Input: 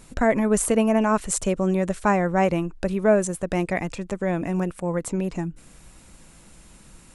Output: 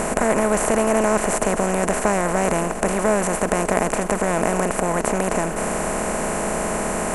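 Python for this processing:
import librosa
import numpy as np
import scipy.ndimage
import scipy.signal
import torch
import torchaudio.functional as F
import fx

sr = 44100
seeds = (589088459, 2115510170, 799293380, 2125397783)

y = fx.bin_compress(x, sr, power=0.2)
y = fx.echo_warbled(y, sr, ms=463, feedback_pct=76, rate_hz=2.8, cents=183, wet_db=-21)
y = F.gain(torch.from_numpy(y), -5.5).numpy()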